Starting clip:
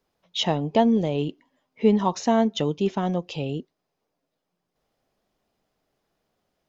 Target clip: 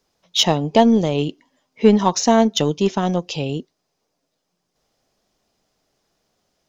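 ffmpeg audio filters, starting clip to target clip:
-af "equalizer=f=5.9k:w=1.1:g=9.5,aeval=exprs='0.473*(cos(1*acos(clip(val(0)/0.473,-1,1)))-cos(1*PI/2))+0.0133*(cos(7*acos(clip(val(0)/0.473,-1,1)))-cos(7*PI/2))':c=same,volume=6dB"

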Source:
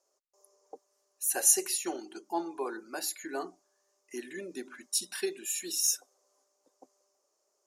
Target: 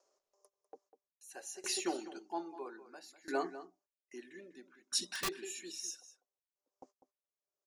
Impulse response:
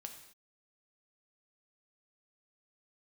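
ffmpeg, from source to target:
-filter_complex "[0:a]agate=range=-37dB:threshold=-60dB:ratio=16:detection=peak,lowpass=5.6k,acompressor=mode=upward:threshold=-51dB:ratio=2.5,asplit=2[a][b];[b]adelay=198.3,volume=-11dB,highshelf=f=4k:g=-4.46[c];[a][c]amix=inputs=2:normalize=0,asettb=1/sr,asplit=3[d][e][f];[d]atrim=end=5.054[g];[e]atrim=start=5.05:end=5.45,asetpts=PTS-STARTPTS,afade=t=in:d=0.004:c=qsin,afade=t=out:st=0.396:d=0.004:c=qsin,aeval=exprs='(mod(26.6*val(0)+1,2)-1)/26.6':c=same[h];[f]atrim=start=5.446[i];[g][h]acrossfade=d=0.004:c1=hsin:c2=qsin[j];[j][i]acrossfade=d=0.004:c1=qsin:c2=hsin,aeval=exprs='val(0)*pow(10,-21*if(lt(mod(0.61*n/s,1),2*abs(0.61)/1000),1-mod(0.61*n/s,1)/(2*abs(0.61)/1000),(mod(0.61*n/s,1)-2*abs(0.61)/1000)/(1-2*abs(0.61)/1000))/20)':c=same,volume=2.5dB"

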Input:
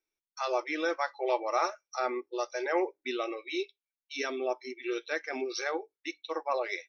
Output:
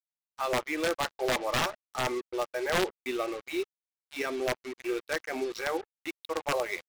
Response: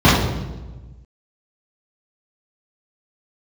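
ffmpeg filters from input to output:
-af "aeval=exprs='(mod(11.2*val(0)+1,2)-1)/11.2':c=same,adynamicsmooth=sensitivity=4:basefreq=2k,acrusher=bits=6:mix=0:aa=0.5,volume=2dB"

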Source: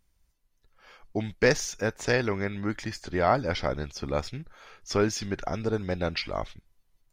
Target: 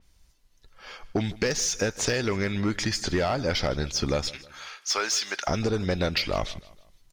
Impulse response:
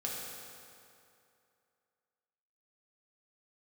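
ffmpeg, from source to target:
-filter_complex "[0:a]asettb=1/sr,asplit=3[a][b][c];[a]atrim=end=4.304[d];[b]atrim=start=4.3:end=5.48,asetpts=PTS-STARTPTS,afade=t=in:d=0.004:c=qsin,afade=t=out:st=1.176:d=0.004:c=qsin,highpass=930[e];[c]atrim=start=5.476[f];[d][e]acrossfade=d=0.004:c1=hsin:c2=qsin[g];[g][f]acrossfade=d=0.004:c1=qsin:c2=hsin,alimiter=limit=-16dB:level=0:latency=1:release=332,acrossover=split=3500[h][i];[h]asoftclip=type=hard:threshold=-23.5dB[j];[i]asplit=2[k][l];[l]highpass=f=720:p=1,volume=15dB,asoftclip=type=tanh:threshold=-23dB[m];[k][m]amix=inputs=2:normalize=0,lowpass=f=7.5k:p=1,volume=-6dB[n];[j][n]amix=inputs=2:normalize=0,acompressor=threshold=-31dB:ratio=6,highshelf=f=6.7k:g=-10,aecho=1:1:157|314|471:0.1|0.042|0.0176,adynamicequalizer=threshold=0.00282:dfrequency=4600:dqfactor=0.7:tfrequency=4600:tqfactor=0.7:attack=5:release=100:ratio=0.375:range=2.5:mode=boostabove:tftype=highshelf,volume=9dB"

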